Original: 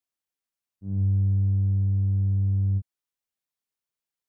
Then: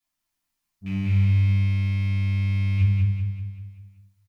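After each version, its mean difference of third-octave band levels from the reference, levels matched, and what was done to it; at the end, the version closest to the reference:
7.0 dB: loose part that buzzes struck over −38 dBFS, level −36 dBFS
parametric band 480 Hz −12.5 dB 0.66 octaves
on a send: repeating echo 192 ms, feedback 48%, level −3.5 dB
on the sum: rectangular room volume 330 cubic metres, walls furnished, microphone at 5.9 metres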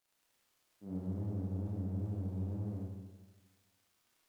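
10.0 dB: high-pass filter 400 Hz 12 dB per octave
surface crackle 100 per second −63 dBFS
tape wow and flutter 130 cents
four-comb reverb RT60 1.3 s, combs from 25 ms, DRR −5.5 dB
level +2.5 dB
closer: first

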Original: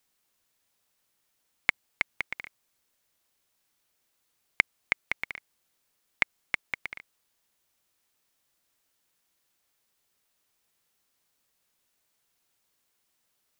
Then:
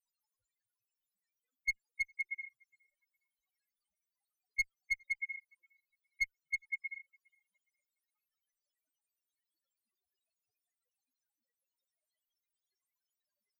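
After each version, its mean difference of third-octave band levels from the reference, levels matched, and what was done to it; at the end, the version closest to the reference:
15.0 dB: in parallel at +1.5 dB: brickwall limiter −11 dBFS, peak gain reduction 9 dB
on the sum: spectral peaks only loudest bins 2
asymmetric clip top −29 dBFS, bottom −23 dBFS
tape delay 412 ms, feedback 40%, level −23.5 dB, low-pass 1,200 Hz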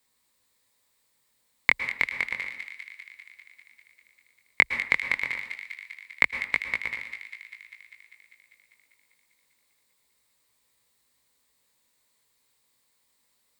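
3.5 dB: EQ curve with evenly spaced ripples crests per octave 0.98, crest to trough 7 dB
chorus effect 0.28 Hz, delay 16.5 ms, depth 7.4 ms
on a send: delay with a high-pass on its return 198 ms, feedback 71%, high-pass 2,400 Hz, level −8 dB
on the sum: dense smooth reverb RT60 0.65 s, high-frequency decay 0.75×, pre-delay 100 ms, DRR 9 dB
level +5.5 dB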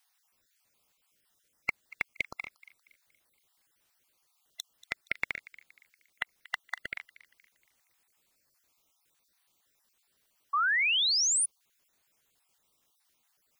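7.0 dB: time-frequency cells dropped at random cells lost 36%
brickwall limiter −16 dBFS, peak gain reduction 9 dB
on a send: delay with a high-pass on its return 235 ms, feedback 39%, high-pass 2,000 Hz, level −16.5 dB
on the sum: sound drawn into the spectrogram rise, 0:10.53–0:11.46, 1,100–10,000 Hz −30 dBFS
level +3.5 dB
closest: second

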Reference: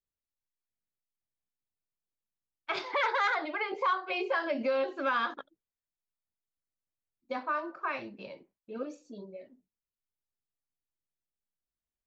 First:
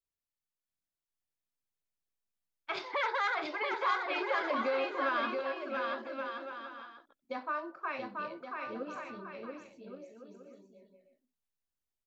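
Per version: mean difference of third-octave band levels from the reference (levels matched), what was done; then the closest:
5.0 dB: bouncing-ball delay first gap 680 ms, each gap 0.65×, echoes 5
level −3.5 dB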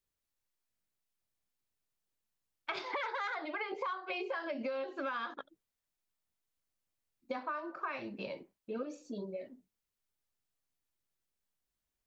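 3.5 dB: downward compressor 6 to 1, threshold −41 dBFS, peak gain reduction 15.5 dB
level +5 dB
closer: second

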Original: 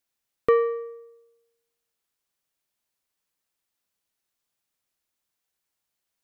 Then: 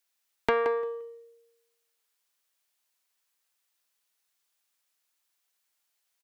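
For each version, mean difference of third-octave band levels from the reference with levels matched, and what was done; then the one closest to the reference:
6.5 dB: high-pass filter 970 Hz 6 dB per octave
downward compressor, threshold −24 dBFS, peak gain reduction 4.5 dB
on a send: repeating echo 174 ms, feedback 19%, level −8 dB
on the sum: highs frequency-modulated by the lows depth 0.51 ms
level +4 dB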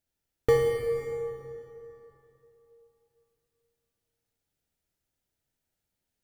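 13.0 dB: in parallel at −10 dB: decimation without filtering 34×
on the sum: Butterworth band-reject 1,100 Hz, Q 6.9
low-shelf EQ 160 Hz +11.5 dB
dense smooth reverb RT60 3.2 s, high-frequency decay 0.65×, DRR 1.5 dB
level −5.5 dB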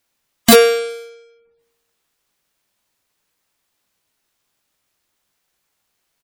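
9.5 dB: each half-wave held at its own peak
gate on every frequency bin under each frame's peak −30 dB strong
wrap-around overflow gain 11.5 dB
double-tracking delay 19 ms −9 dB
level +7.5 dB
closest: first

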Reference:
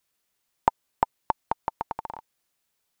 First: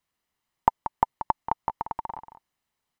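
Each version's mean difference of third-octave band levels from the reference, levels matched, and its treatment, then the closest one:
3.0 dB: high-shelf EQ 3,600 Hz −11 dB
comb filter 1 ms, depth 34%
single-tap delay 183 ms −11 dB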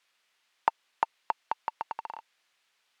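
5.5 dB: mu-law and A-law mismatch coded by mu
resonant band-pass 2,900 Hz, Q 0.8
high-shelf EQ 3,000 Hz −9.5 dB
level +5 dB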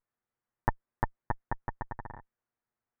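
7.5 dB: lower of the sound and its delayed copy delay 8.4 ms
low-pass filter 1,800 Hz 24 dB per octave
low-shelf EQ 160 Hz +4.5 dB
level −5.5 dB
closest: first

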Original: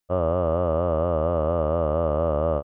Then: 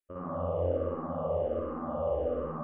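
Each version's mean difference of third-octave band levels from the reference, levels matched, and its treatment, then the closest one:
4.0 dB: brickwall limiter −18 dBFS, peak gain reduction 7 dB
on a send: flutter between parallel walls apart 10.3 metres, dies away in 0.44 s
on the sum: spring reverb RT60 1.2 s, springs 56 ms, chirp 50 ms, DRR −7 dB
frequency shifter mixed with the dry sound −1.3 Hz
level −8.5 dB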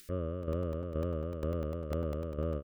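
6.0 dB: upward compression, threshold −26 dBFS
shaped tremolo saw down 2.1 Hz, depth 65%
Butterworth band-reject 820 Hz, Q 0.86
regular buffer underruns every 0.10 s, samples 64, zero, from 0:00.43
level −5.5 dB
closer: first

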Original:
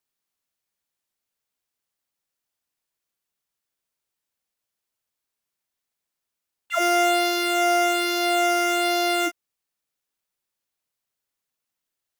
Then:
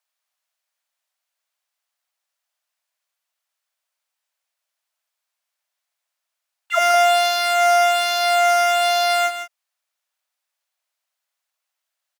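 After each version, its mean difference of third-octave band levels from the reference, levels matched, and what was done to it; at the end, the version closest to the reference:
4.0 dB: Chebyshev high-pass filter 600 Hz, order 4
high-shelf EQ 8,600 Hz −5.5 dB
single-tap delay 162 ms −10 dB
level +5.5 dB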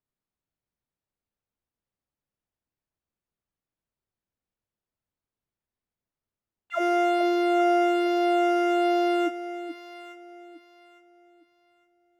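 8.0 dB: low-pass filter 1,200 Hz 6 dB per octave
low-shelf EQ 250 Hz +11.5 dB
on a send: delay that swaps between a low-pass and a high-pass 429 ms, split 820 Hz, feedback 52%, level −7 dB
on the sum: level −3 dB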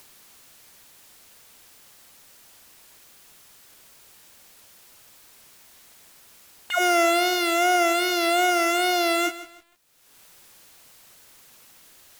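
3.0 dB: upward compression, threshold −26 dBFS
tape wow and flutter 60 cents
feedback echo at a low word length 157 ms, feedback 35%, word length 7 bits, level −14.5 dB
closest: third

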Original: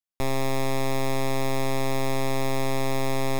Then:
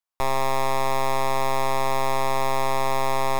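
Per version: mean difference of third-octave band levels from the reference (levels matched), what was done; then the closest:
4.0 dB: octave-band graphic EQ 125/250/1,000 Hz −4/−9/+10 dB
level +1 dB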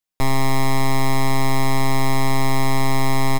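2.0 dB: comb filter 6.5 ms, depth 70%
level +5 dB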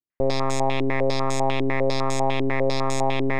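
10.0 dB: low-pass on a step sequencer 10 Hz 340–7,300 Hz
level +1 dB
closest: second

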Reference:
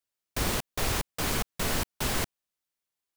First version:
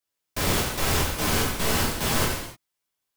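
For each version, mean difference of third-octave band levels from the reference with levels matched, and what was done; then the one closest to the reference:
4.0 dB: reverb whose tail is shaped and stops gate 330 ms falling, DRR −5 dB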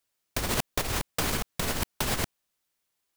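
2.5 dB: compressor whose output falls as the input rises −31 dBFS, ratio −0.5
level +4 dB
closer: second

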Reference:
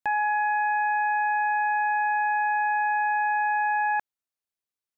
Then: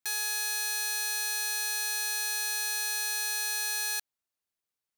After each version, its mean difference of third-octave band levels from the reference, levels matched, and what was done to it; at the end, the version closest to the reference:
18.0 dB: wrap-around overflow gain 26.5 dB
level +1.5 dB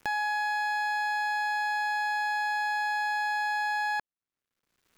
8.0 dB: running median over 15 samples
parametric band 740 Hz −6 dB 0.91 octaves
upward compression, threshold −33 dBFS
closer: second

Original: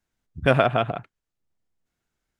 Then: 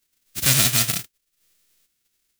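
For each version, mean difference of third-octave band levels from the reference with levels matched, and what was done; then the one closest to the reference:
16.5 dB: spectral envelope flattened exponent 0.1
parametric band 820 Hz −13 dB 1.6 octaves
in parallel at −3 dB: downward compressor, threshold −25 dBFS, peak gain reduction 11 dB
on the sum: soft clipping −15 dBFS, distortion −10 dB
level +4 dB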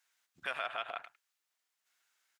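10.5 dB: downward compressor 6 to 1, threshold −30 dBFS, peak gain reduction 16 dB
on a send: single-tap delay 104 ms −18.5 dB
on the sum: brickwall limiter −24.5 dBFS, peak gain reduction 6 dB
high-pass filter 1,300 Hz 12 dB per octave
level +7.5 dB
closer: second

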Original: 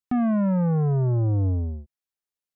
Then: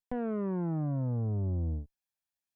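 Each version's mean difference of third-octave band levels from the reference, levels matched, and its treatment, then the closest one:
6.0 dB: lower of the sound and its delayed copy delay 1.2 ms
reversed playback
downward compressor 6 to 1, threshold −30 dBFS, peak gain reduction 10 dB
reversed playback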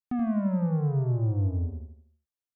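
2.5 dB: low-shelf EQ 360 Hz +3.5 dB
repeating echo 80 ms, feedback 43%, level −6 dB
level −8.5 dB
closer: second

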